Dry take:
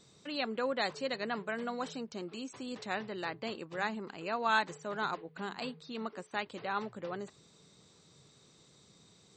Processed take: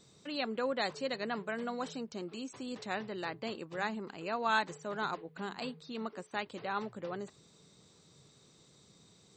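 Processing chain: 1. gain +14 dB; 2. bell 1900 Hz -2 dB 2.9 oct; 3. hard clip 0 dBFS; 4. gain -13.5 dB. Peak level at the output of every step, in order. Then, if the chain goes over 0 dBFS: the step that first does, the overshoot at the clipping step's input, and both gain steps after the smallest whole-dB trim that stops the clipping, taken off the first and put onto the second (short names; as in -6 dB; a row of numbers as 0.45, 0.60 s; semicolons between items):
-2.5, -4.5, -4.5, -18.0 dBFS; no overload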